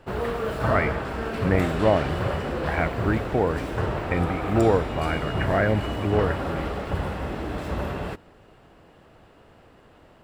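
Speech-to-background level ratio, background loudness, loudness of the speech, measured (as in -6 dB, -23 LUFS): 3.0 dB, -29.0 LUFS, -26.0 LUFS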